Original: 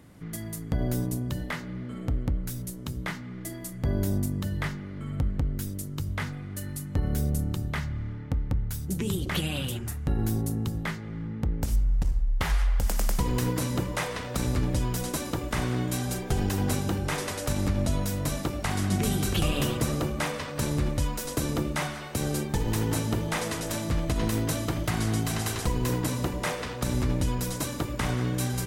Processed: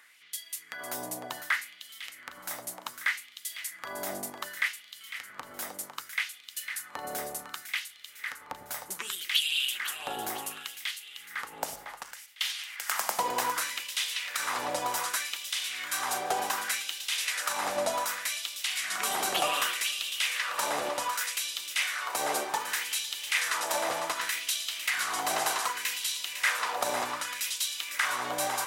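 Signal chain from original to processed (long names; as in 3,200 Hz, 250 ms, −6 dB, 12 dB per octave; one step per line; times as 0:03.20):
echo with a time of its own for lows and highs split 450 Hz, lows 97 ms, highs 503 ms, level −8.5 dB
auto-filter high-pass sine 0.66 Hz 700–3,300 Hz
level +2 dB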